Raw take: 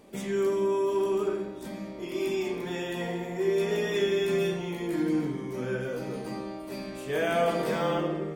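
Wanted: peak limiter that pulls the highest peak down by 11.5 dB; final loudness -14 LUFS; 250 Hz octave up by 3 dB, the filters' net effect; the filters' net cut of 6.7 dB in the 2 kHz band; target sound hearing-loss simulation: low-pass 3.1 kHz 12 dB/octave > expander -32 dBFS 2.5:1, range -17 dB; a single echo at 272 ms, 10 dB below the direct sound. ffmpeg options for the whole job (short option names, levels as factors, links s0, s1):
-af "equalizer=f=250:t=o:g=5,equalizer=f=2000:t=o:g=-8,alimiter=level_in=1.26:limit=0.0631:level=0:latency=1,volume=0.794,lowpass=3100,aecho=1:1:272:0.316,agate=range=0.141:threshold=0.0251:ratio=2.5,volume=8.91"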